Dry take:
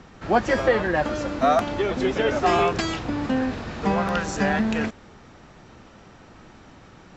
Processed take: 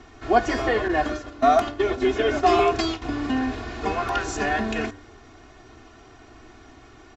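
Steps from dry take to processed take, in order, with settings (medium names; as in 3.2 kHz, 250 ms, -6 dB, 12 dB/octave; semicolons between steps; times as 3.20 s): comb 2.8 ms, depth 99%; 0.88–3.02 s: gate -23 dBFS, range -12 dB; de-hum 98.23 Hz, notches 20; trim -2.5 dB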